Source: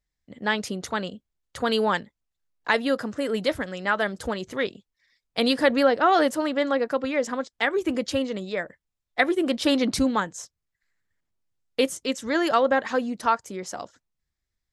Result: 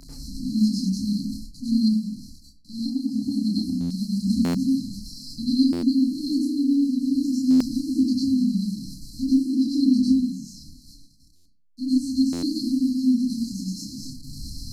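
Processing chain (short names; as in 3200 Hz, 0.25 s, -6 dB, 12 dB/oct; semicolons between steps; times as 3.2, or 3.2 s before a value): delta modulation 64 kbps, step -32.5 dBFS; brick-wall FIR band-stop 300–4000 Hz; three-band isolator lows -12 dB, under 180 Hz, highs -16 dB, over 3900 Hz; reverb RT60 0.40 s, pre-delay 89 ms, DRR -8 dB; 1.96–4.21 compressor 5:1, threshold -28 dBFS, peak gain reduction 9 dB; notches 60/120/180/240 Hz; chorus voices 4, 0.2 Hz, delay 29 ms, depth 3 ms; vocal rider within 4 dB 0.5 s; bell 7200 Hz -2.5 dB 0.77 oct; stuck buffer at 3.8/4.44/5.72/7.5/11.35/12.32, samples 512; gain +6.5 dB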